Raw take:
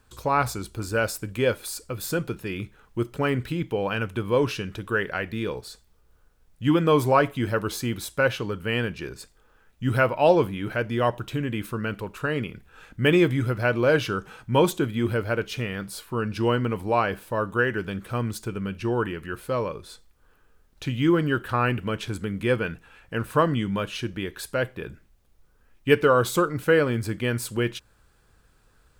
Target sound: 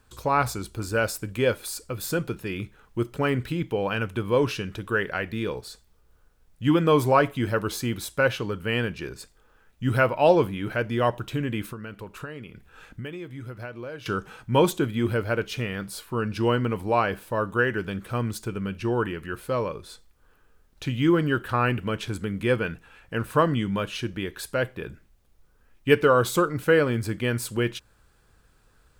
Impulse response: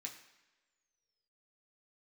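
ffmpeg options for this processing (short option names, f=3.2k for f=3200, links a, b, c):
-filter_complex "[0:a]asettb=1/sr,asplit=3[a][b][c];[a]atrim=end=11.624[d];[b]atrim=start=11.62:end=14.06,asetpts=PTS-STARTPTS,afade=t=in:d=0.004:c=qsin,afade=t=out:st=2.436:d=0.004:c=qsin,acompressor=threshold=-34dB:ratio=10[e];[c]atrim=start=14.056[f];[d][e]acrossfade=d=0.004:c1=hsin:c2=qsin[g];[g][f]acrossfade=d=0.004:c1=qsin:c2=hsin"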